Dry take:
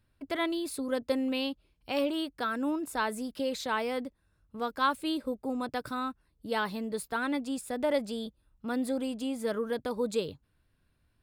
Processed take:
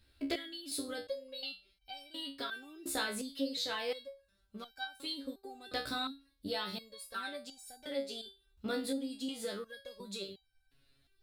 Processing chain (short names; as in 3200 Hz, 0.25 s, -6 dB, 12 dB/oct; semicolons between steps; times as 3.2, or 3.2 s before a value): fifteen-band EQ 160 Hz -10 dB, 1000 Hz -9 dB, 4000 Hz +10 dB; compressor, threshold -38 dBFS, peak gain reduction 14 dB; stepped resonator 2.8 Hz 69–780 Hz; gain +14 dB